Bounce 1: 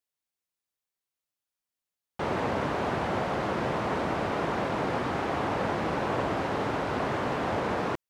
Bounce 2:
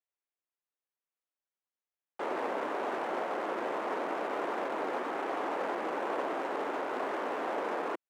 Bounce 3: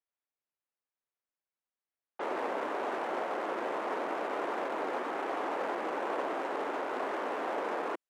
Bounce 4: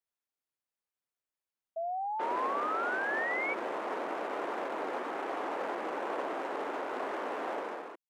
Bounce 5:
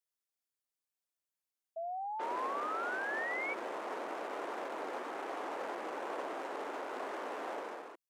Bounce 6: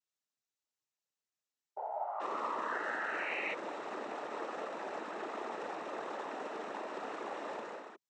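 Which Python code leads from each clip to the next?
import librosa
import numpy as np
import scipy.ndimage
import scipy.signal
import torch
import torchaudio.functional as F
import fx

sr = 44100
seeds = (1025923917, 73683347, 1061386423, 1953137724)

y1 = fx.wiener(x, sr, points=9)
y1 = scipy.signal.sosfilt(scipy.signal.butter(4, 300.0, 'highpass', fs=sr, output='sos'), y1)
y1 = y1 * 10.0 ** (-3.5 / 20.0)
y2 = fx.env_lowpass(y1, sr, base_hz=2500.0, full_db=-33.0)
y2 = fx.low_shelf(y2, sr, hz=110.0, db=-7.5)
y3 = fx.fade_out_tail(y2, sr, length_s=0.58)
y3 = fx.spec_paint(y3, sr, seeds[0], shape='rise', start_s=1.76, length_s=1.78, low_hz=650.0, high_hz=2300.0, level_db=-33.0)
y3 = y3 * 10.0 ** (-1.5 / 20.0)
y4 = fx.bass_treble(y3, sr, bass_db=-3, treble_db=6)
y4 = y4 * 10.0 ** (-4.5 / 20.0)
y5 = fx.noise_vocoder(y4, sr, seeds[1], bands=12)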